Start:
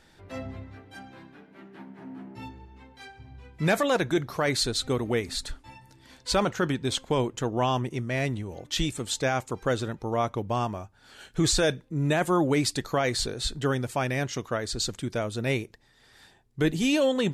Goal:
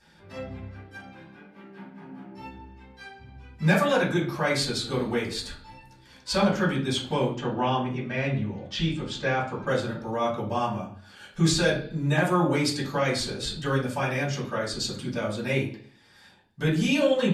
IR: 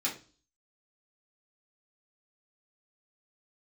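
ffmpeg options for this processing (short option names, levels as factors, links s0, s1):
-filter_complex "[0:a]asettb=1/sr,asplit=3[s0][s1][s2];[s0]atrim=end=7.324[s3];[s1]atrim=start=7.32:end=9.67,asetpts=PTS-STARTPTS,afade=t=in:d=0.004:c=qsin,afade=t=out:st=2.346:d=0.004:c=qsin,lowpass=4000[s4];[s2]atrim=start=9.666[s5];[s3][s4]acrossfade=d=0.004:c1=hsin:c2=qsin[s6];[s6][s5]acrossfade=d=0.004:c1=qsin:c2=hsin[s7];[1:a]atrim=start_sample=2205,asetrate=29106,aresample=44100[s8];[s7][s8]afir=irnorm=-1:irlink=0,volume=0.422"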